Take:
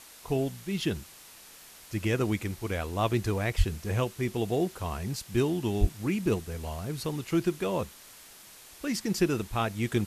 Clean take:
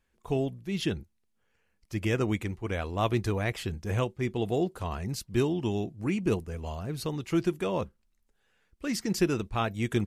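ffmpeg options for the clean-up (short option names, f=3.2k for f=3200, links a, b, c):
-filter_complex "[0:a]asplit=3[a][b][c];[a]afade=t=out:st=3.57:d=0.02[d];[b]highpass=f=140:w=0.5412,highpass=f=140:w=1.3066,afade=t=in:st=3.57:d=0.02,afade=t=out:st=3.69:d=0.02[e];[c]afade=t=in:st=3.69:d=0.02[f];[d][e][f]amix=inputs=3:normalize=0,asplit=3[g][h][i];[g]afade=t=out:st=5.8:d=0.02[j];[h]highpass=f=140:w=0.5412,highpass=f=140:w=1.3066,afade=t=in:st=5.8:d=0.02,afade=t=out:st=5.92:d=0.02[k];[i]afade=t=in:st=5.92:d=0.02[l];[j][k][l]amix=inputs=3:normalize=0,afwtdn=0.0035"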